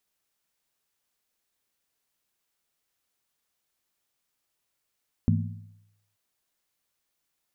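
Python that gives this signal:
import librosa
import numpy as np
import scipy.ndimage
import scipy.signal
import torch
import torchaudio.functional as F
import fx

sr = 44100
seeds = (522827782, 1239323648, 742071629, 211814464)

y = fx.strike_skin(sr, length_s=0.88, level_db=-19.5, hz=103.0, decay_s=0.84, tilt_db=2.0, modes=4)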